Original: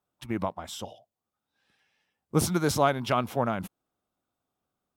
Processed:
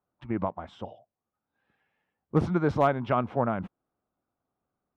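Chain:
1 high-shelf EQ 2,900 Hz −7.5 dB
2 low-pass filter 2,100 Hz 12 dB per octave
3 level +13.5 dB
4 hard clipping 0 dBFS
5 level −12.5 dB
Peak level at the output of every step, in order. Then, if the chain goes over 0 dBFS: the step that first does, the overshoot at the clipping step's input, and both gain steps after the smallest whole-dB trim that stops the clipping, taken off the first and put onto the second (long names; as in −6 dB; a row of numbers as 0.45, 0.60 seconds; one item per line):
−10.0, −10.5, +3.0, 0.0, −12.5 dBFS
step 3, 3.0 dB
step 3 +10.5 dB, step 5 −9.5 dB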